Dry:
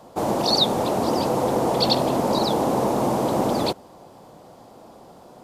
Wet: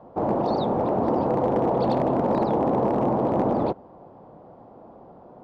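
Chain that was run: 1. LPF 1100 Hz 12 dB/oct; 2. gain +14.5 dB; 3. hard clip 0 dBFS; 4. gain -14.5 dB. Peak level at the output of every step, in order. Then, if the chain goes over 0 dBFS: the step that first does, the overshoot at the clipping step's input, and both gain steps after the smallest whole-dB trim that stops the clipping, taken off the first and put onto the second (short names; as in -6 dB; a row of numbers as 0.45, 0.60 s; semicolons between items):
-10.5, +4.0, 0.0, -14.5 dBFS; step 2, 4.0 dB; step 2 +10.5 dB, step 4 -10.5 dB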